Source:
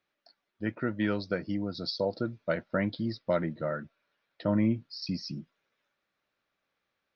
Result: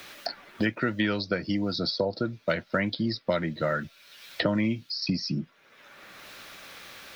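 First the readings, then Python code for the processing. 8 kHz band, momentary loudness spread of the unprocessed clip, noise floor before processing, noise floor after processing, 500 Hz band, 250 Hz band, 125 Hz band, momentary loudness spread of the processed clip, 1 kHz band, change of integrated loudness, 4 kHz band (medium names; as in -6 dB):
no reading, 9 LU, -83 dBFS, -61 dBFS, +2.5 dB, +2.5 dB, +2.5 dB, 17 LU, +5.0 dB, +3.0 dB, +8.5 dB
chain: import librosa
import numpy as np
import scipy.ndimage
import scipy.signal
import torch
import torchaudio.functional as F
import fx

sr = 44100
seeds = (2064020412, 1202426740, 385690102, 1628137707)

y = fx.high_shelf(x, sr, hz=2200.0, db=9.5)
y = fx.band_squash(y, sr, depth_pct=100)
y = y * librosa.db_to_amplitude(2.0)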